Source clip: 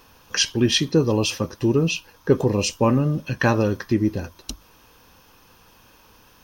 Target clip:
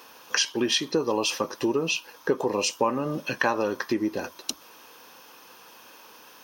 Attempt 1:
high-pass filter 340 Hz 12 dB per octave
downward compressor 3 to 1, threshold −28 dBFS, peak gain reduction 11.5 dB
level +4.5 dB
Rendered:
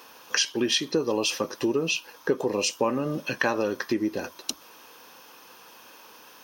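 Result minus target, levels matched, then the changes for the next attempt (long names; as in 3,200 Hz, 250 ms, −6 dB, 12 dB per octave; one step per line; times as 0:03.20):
1,000 Hz band −3.0 dB
add after high-pass filter: dynamic equaliser 960 Hz, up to +6 dB, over −41 dBFS, Q 1.8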